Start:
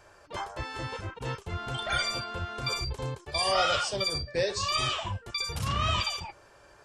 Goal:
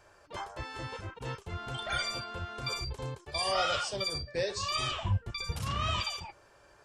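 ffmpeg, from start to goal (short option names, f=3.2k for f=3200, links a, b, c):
-filter_complex "[0:a]asettb=1/sr,asplit=3[a][b][c];[a]atrim=end=4.914[d];[b]atrim=start=4.91:end=5.52,asetpts=PTS-STARTPTS,afade=t=in:d=0.004:c=qsin,afade=t=out:st=0.606:d=0.004:c=qsin,bass=f=250:g=11,treble=f=4k:g=-5[e];[c]atrim=start=5.516[f];[d][e]acrossfade=d=0.004:c1=hsin:c2=qsin[g];[g][f]acrossfade=d=0.004:c1=qsin:c2=hsin,volume=-4dB"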